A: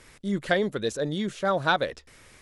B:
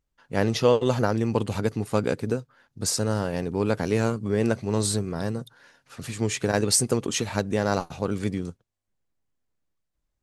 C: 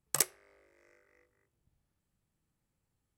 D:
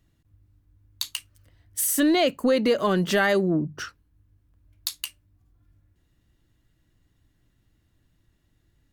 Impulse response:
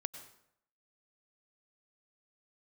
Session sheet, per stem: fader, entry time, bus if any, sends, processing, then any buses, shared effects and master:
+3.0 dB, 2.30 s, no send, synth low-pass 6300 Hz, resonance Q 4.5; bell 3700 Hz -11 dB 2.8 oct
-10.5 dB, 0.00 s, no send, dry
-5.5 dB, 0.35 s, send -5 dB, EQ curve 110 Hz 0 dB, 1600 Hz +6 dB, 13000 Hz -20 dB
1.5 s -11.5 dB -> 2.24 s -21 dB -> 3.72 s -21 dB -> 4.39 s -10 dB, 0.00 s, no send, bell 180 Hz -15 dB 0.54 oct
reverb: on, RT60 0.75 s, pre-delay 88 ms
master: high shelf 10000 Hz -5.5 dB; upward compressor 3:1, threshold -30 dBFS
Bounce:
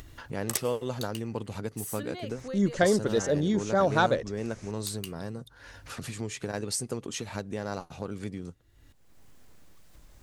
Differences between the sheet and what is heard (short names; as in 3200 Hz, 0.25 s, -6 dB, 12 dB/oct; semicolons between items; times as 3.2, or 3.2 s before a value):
stem C: missing EQ curve 110 Hz 0 dB, 1600 Hz +6 dB, 13000 Hz -20 dB; master: missing high shelf 10000 Hz -5.5 dB